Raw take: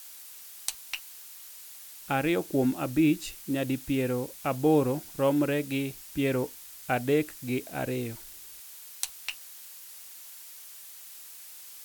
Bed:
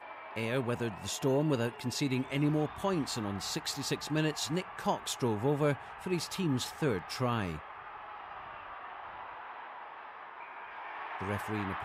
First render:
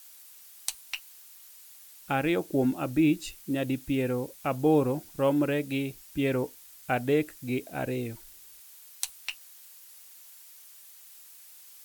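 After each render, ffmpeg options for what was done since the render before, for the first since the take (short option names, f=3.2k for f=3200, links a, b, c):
-af "afftdn=nr=6:nf=-47"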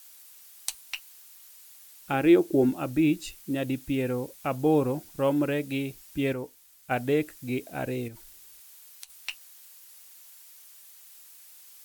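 -filter_complex "[0:a]asettb=1/sr,asplit=3[a][b][c];[a]atrim=end=2.134[d];[b]atrim=start=2.13:end=2.69,asetpts=PTS-STARTPTS,afade=t=in:d=0.004:c=qsin,afade=t=out:st=0.556:d=0.004:c=qsin,equalizer=f=350:t=o:w=0.35:g=11.5[e];[c]atrim=start=2.686[f];[d][e]acrossfade=d=0.004:c1=hsin:c2=qsin[g];[g][f]acrossfade=d=0.004:c1=qsin:c2=hsin,asettb=1/sr,asplit=3[h][i][j];[h]atrim=end=8.084[k];[i]atrim=start=8.08:end=9.1,asetpts=PTS-STARTPTS,afade=t=in:d=0.004:c=qsin,afade=t=out:st=1.016:d=0.004:c=qsin,acompressor=threshold=-40dB:ratio=10:attack=3.2:release=140:knee=1:detection=peak[l];[j]atrim=start=9.096[m];[k][l]acrossfade=d=0.004:c1=hsin:c2=qsin[n];[n][m]acrossfade=d=0.004:c1=qsin:c2=hsin,asplit=3[o][p][q];[o]atrim=end=6.332[r];[p]atrim=start=6.328:end=6.912,asetpts=PTS-STARTPTS,volume=-6dB[s];[q]atrim=start=6.908[t];[r][s]acrossfade=d=0.004:c1=hsin:c2=hsin[u];[u][t]acrossfade=d=0.004:c1=hsin:c2=hsin"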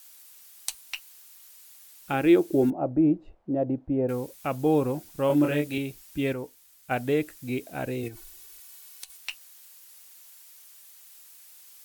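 -filter_complex "[0:a]asettb=1/sr,asplit=3[a][b][c];[a]atrim=end=2.704[d];[b]atrim=start=2.7:end=4.09,asetpts=PTS-STARTPTS,afade=t=in:d=0.004:c=qsin,afade=t=out:st=1.386:d=0.004:c=qsin,lowpass=f=690:t=q:w=2.5[e];[c]atrim=start=4.086[f];[d][e]acrossfade=d=0.004:c1=hsin:c2=qsin[g];[g][f]acrossfade=d=0.004:c1=qsin:c2=hsin,asettb=1/sr,asplit=3[h][i][j];[h]atrim=end=5.274[k];[i]atrim=start=5.27:end=5.78,asetpts=PTS-STARTPTS,afade=t=in:d=0.004:c=qsin,afade=t=out:st=0.506:d=0.004:c=qsin,asplit=2[l][m];[m]adelay=27,volume=-2dB[n];[l][n]amix=inputs=2:normalize=0,atrim=end_sample=22491[o];[j]atrim=start=5.776[p];[k][o]acrossfade=d=0.004:c1=hsin:c2=qsin[q];[q][p]acrossfade=d=0.004:c1=qsin:c2=hsin,asettb=1/sr,asplit=3[r][s][t];[r]atrim=end=8.034[u];[s]atrim=start=8.03:end=9.17,asetpts=PTS-STARTPTS,afade=t=in:d=0.004:c=qsin,afade=t=out:st=1.136:d=0.004:c=qsin,aecho=1:1:2.7:0.94,atrim=end_sample=50274[v];[t]atrim=start=9.166[w];[u][v]acrossfade=d=0.004:c1=hsin:c2=qsin[x];[x][w]acrossfade=d=0.004:c1=qsin:c2=hsin"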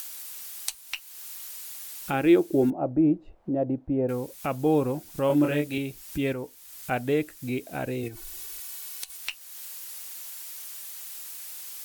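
-af "acompressor=mode=upward:threshold=-28dB:ratio=2.5"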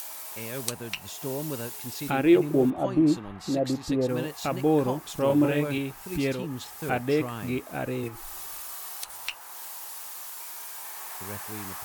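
-filter_complex "[1:a]volume=-4dB[a];[0:a][a]amix=inputs=2:normalize=0"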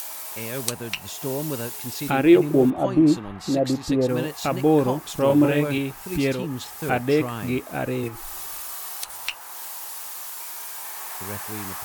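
-af "volume=4.5dB"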